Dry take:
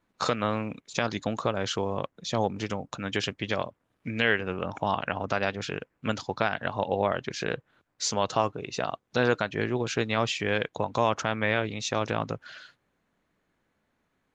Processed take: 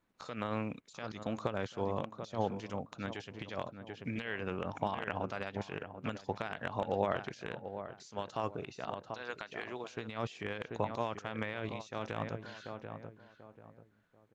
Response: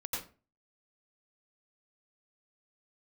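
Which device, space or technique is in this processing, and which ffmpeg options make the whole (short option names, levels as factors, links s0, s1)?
de-esser from a sidechain: -filter_complex "[0:a]asettb=1/sr,asplit=3[s0][s1][s2];[s0]atrim=end=9.084[s3];[s1]atrim=start=9.08:end=9.97,asetpts=PTS-STARTPTS,afade=t=in:d=0.004:c=qsin,afade=t=out:st=0.886:d=0.004:c=qsin,highpass=f=1100:p=1[s4];[s2]atrim=start=9.966[s5];[s3][s4]acrossfade=d=0.004:c1=hsin:c2=qsin[s6];[s6][s5]acrossfade=d=0.004:c1=qsin:c2=hsin,asplit=2[s7][s8];[s8]adelay=738,lowpass=f=1300:p=1,volume=0.282,asplit=2[s9][s10];[s10]adelay=738,lowpass=f=1300:p=1,volume=0.32,asplit=2[s11][s12];[s12]adelay=738,lowpass=f=1300:p=1,volume=0.32[s13];[s7][s9][s11][s13]amix=inputs=4:normalize=0,asplit=2[s14][s15];[s15]highpass=f=4000:w=0.5412,highpass=f=4000:w=1.3066,apad=whole_len=730230[s16];[s14][s16]sidechaincompress=threshold=0.00282:ratio=6:attack=2.6:release=69,volume=0.596"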